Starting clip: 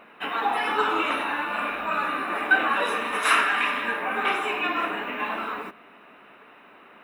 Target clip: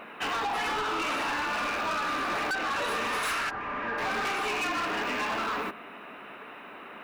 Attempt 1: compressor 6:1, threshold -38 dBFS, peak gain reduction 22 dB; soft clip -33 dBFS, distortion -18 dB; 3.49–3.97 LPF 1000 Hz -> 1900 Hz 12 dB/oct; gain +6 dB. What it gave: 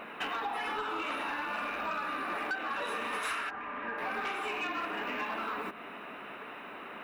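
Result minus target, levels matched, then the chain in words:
compressor: peak gain reduction +10 dB
compressor 6:1, threshold -26 dBFS, peak gain reduction 12 dB; soft clip -33 dBFS, distortion -9 dB; 3.49–3.97 LPF 1000 Hz -> 1900 Hz 12 dB/oct; gain +6 dB

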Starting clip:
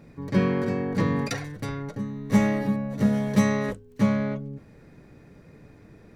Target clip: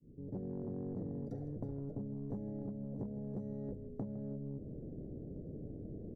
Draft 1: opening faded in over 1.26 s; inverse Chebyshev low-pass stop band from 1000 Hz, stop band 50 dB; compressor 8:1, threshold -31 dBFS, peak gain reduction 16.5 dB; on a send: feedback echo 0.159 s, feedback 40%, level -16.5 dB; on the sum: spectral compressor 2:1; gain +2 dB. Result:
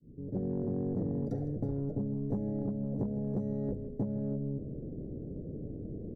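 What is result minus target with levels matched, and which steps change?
compressor: peak gain reduction -6 dB
change: compressor 8:1, threshold -38 dBFS, peak gain reduction 22.5 dB

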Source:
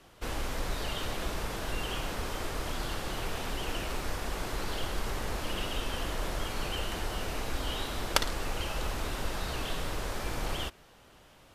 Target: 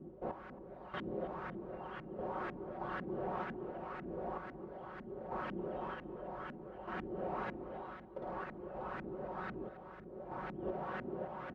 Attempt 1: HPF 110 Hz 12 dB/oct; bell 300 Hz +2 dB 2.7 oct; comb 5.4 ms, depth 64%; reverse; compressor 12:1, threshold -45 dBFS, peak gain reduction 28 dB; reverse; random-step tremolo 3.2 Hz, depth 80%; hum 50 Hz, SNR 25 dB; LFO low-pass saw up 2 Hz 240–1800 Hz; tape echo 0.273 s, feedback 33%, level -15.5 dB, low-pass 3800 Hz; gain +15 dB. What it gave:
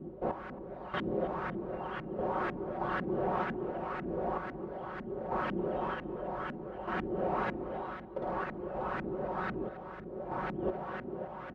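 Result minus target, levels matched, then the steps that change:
compressor: peak gain reduction -7.5 dB
change: compressor 12:1, threshold -53 dBFS, peak gain reduction 35 dB

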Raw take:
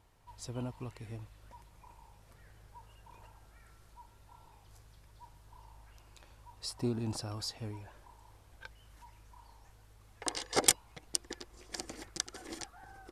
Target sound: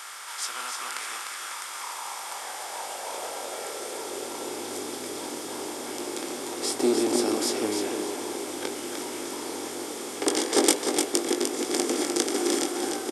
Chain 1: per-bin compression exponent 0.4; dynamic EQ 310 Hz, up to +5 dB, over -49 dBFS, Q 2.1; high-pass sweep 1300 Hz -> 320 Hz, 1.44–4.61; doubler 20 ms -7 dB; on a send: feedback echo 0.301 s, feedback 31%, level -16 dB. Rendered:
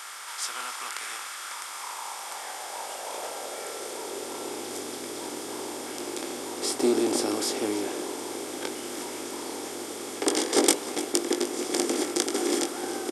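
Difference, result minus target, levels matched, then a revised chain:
echo-to-direct -10.5 dB
per-bin compression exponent 0.4; dynamic EQ 310 Hz, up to +5 dB, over -49 dBFS, Q 2.1; high-pass sweep 1300 Hz -> 320 Hz, 1.44–4.61; doubler 20 ms -7 dB; on a send: feedback echo 0.301 s, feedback 31%, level -5.5 dB

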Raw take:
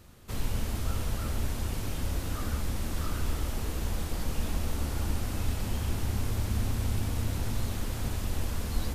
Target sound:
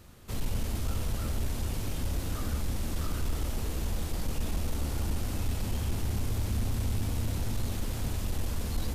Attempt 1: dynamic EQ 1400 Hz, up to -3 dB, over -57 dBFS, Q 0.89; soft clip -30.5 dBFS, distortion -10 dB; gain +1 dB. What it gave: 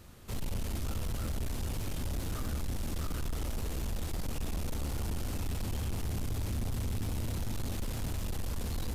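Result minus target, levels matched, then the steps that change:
soft clip: distortion +9 dB
change: soft clip -22 dBFS, distortion -19 dB

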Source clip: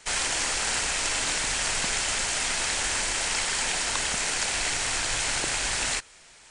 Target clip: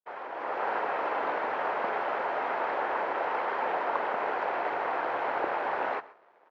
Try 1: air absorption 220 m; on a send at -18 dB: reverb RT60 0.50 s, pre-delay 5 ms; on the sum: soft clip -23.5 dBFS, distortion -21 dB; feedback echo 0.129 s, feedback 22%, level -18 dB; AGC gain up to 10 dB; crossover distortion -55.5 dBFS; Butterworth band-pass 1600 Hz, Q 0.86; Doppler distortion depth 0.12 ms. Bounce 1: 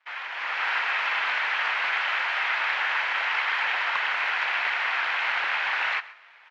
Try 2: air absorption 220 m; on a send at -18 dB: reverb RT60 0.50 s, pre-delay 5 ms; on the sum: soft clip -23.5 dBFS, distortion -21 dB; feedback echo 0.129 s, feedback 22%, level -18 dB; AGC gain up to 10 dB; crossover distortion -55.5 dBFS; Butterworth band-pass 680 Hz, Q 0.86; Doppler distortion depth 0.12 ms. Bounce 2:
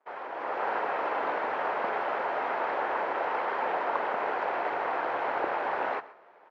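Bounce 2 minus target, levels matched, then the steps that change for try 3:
crossover distortion: distortion -7 dB
change: crossover distortion -48 dBFS

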